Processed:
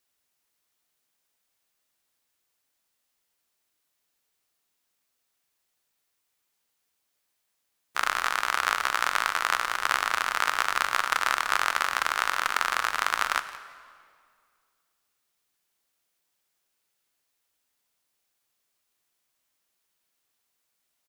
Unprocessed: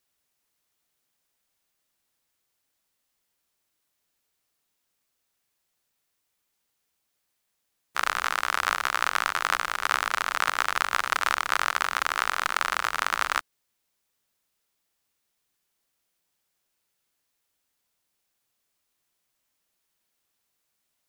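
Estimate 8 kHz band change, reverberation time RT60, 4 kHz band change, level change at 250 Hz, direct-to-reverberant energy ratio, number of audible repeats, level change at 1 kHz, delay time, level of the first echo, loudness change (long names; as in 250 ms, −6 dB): +0.5 dB, 2.1 s, +0.5 dB, −2.0 dB, 11.0 dB, 1, 0.0 dB, 172 ms, −17.5 dB, 0.0 dB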